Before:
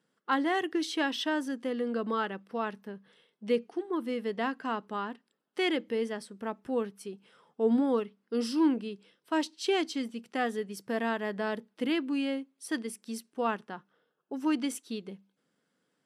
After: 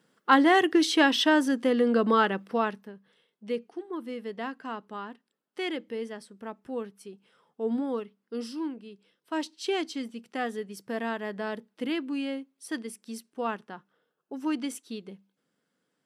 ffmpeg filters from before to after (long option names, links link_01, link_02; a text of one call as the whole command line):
ffmpeg -i in.wav -af "volume=18dB,afade=type=out:start_time=2.47:duration=0.45:silence=0.251189,afade=type=out:start_time=8.34:duration=0.4:silence=0.446684,afade=type=in:start_time=8.74:duration=0.76:silence=0.334965" out.wav